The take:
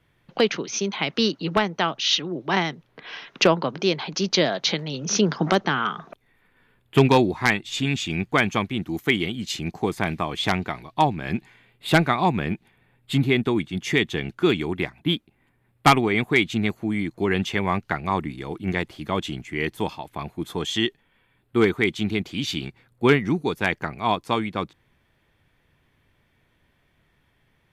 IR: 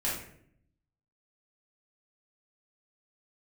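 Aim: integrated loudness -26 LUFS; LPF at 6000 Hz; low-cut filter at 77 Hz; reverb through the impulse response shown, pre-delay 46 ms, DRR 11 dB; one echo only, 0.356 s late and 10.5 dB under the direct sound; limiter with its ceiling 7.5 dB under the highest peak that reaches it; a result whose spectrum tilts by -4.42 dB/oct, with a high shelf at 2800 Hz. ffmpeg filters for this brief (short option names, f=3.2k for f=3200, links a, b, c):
-filter_complex "[0:a]highpass=77,lowpass=6k,highshelf=f=2.8k:g=4.5,alimiter=limit=-10dB:level=0:latency=1,aecho=1:1:356:0.299,asplit=2[a][b];[1:a]atrim=start_sample=2205,adelay=46[c];[b][c]afir=irnorm=-1:irlink=0,volume=-18dB[d];[a][d]amix=inputs=2:normalize=0,volume=-1.5dB"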